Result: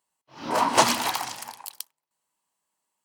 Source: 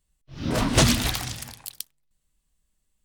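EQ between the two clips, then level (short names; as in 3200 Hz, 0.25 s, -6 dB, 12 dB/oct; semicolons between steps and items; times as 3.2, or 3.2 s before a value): HPF 330 Hz 12 dB/oct; bell 930 Hz +14.5 dB 0.65 oct; notch 3600 Hz, Q 14; -1.5 dB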